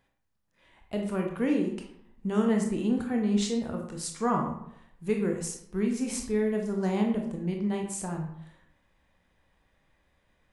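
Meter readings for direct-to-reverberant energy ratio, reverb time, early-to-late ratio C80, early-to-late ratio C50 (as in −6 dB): 1.5 dB, 0.75 s, 8.5 dB, 5.5 dB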